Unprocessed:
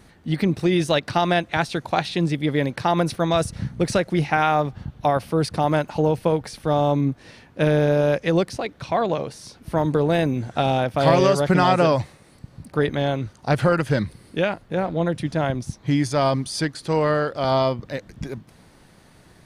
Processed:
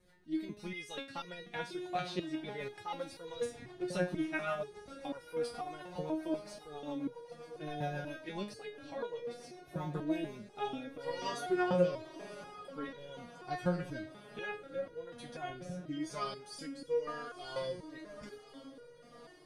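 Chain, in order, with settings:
on a send: feedback delay with all-pass diffusion 1,007 ms, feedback 55%, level −12 dB
on the sum: rotating-speaker cabinet horn 7.5 Hz, later 1 Hz, at 0:09.87
flanger 0.17 Hz, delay 1.8 ms, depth 7.9 ms, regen +37%
step-sequenced resonator 4.1 Hz 180–480 Hz
level +3.5 dB

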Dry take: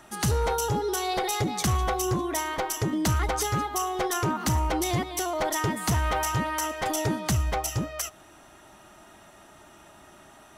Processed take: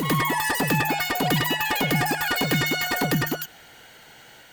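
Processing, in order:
backwards echo 243 ms −4.5 dB
wrong playback speed 33 rpm record played at 78 rpm
level +2 dB

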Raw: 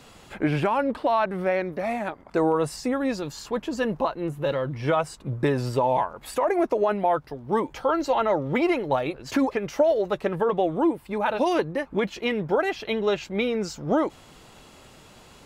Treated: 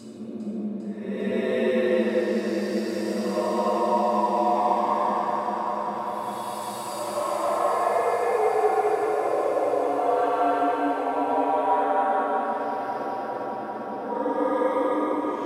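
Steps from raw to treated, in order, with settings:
frequency shifter +82 Hz
extreme stretch with random phases 6.2×, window 0.25 s, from 0:05.20
delay that swaps between a low-pass and a high-pass 200 ms, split 910 Hz, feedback 90%, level −6 dB
level −2.5 dB

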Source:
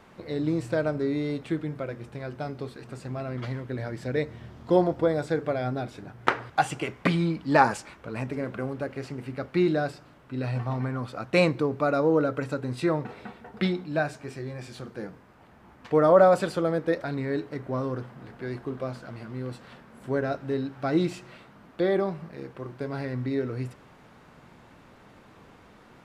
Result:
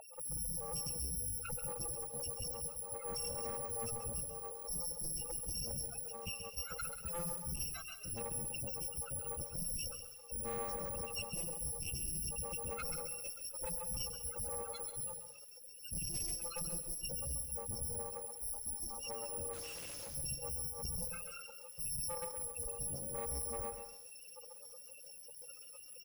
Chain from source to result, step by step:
samples in bit-reversed order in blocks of 128 samples
high-pass filter 310 Hz 12 dB per octave
high-shelf EQ 7,700 Hz +11 dB
downward compressor 5 to 1, threshold −22 dBFS, peak gain reduction 16 dB
mid-hump overdrive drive 22 dB, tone 1,100 Hz, clips at −1 dBFS
spectral peaks only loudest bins 16
tube saturation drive 39 dB, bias 0.25
0:18.26–0:18.98: phaser with its sweep stopped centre 510 Hz, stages 6
single-tap delay 187 ms −15.5 dB
0:19.53–0:20.15: comparator with hysteresis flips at −59.5 dBFS
feedback echo at a low word length 134 ms, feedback 35%, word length 10 bits, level −8 dB
level +2 dB

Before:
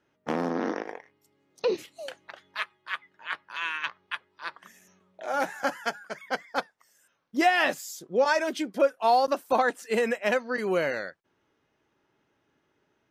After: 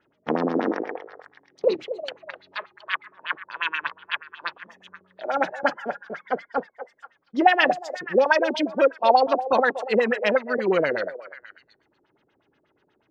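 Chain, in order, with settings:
echo through a band-pass that steps 240 ms, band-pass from 590 Hz, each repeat 1.4 octaves, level −10 dB
auto-filter low-pass sine 8.3 Hz 330–4,500 Hz
level +2.5 dB

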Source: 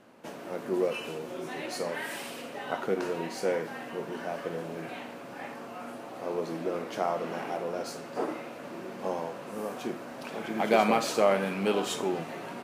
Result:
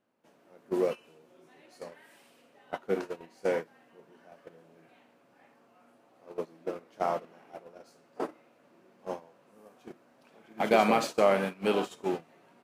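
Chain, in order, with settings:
noise gate −29 dBFS, range −21 dB

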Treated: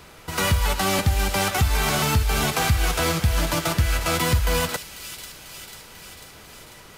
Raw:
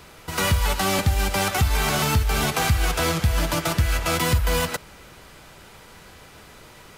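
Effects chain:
delay with a high-pass on its return 494 ms, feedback 66%, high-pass 2,900 Hz, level −9 dB

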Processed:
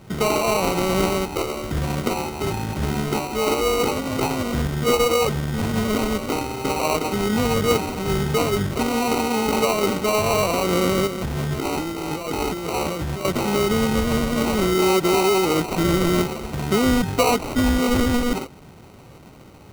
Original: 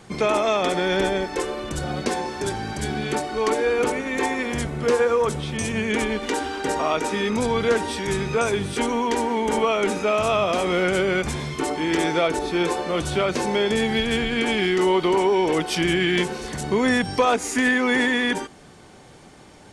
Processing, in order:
parametric band 93 Hz +7 dB 2.3 octaves
0:11.07–0:13.25: compressor whose output falls as the input rises −26 dBFS, ratio −1
sample-rate reduction 1,700 Hz, jitter 0%

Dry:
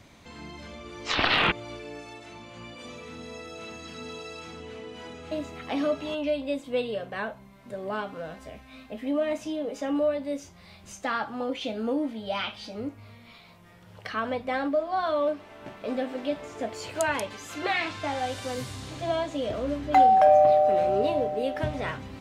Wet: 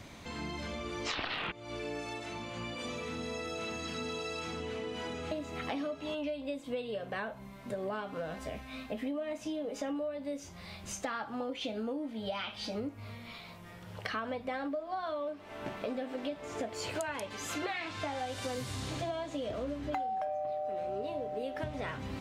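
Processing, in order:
downward compressor 12 to 1, threshold −37 dBFS, peak gain reduction 23 dB
level +3.5 dB

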